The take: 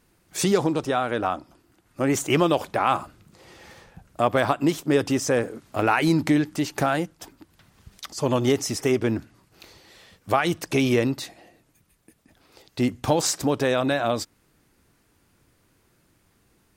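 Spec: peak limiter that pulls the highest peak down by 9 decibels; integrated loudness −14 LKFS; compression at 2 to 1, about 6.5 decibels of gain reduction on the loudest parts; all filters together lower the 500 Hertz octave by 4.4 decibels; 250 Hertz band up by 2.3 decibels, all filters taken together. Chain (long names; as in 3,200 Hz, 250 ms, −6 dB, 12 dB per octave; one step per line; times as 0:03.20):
parametric band 250 Hz +5.5 dB
parametric band 500 Hz −8 dB
downward compressor 2 to 1, threshold −27 dBFS
level +17.5 dB
brickwall limiter −2.5 dBFS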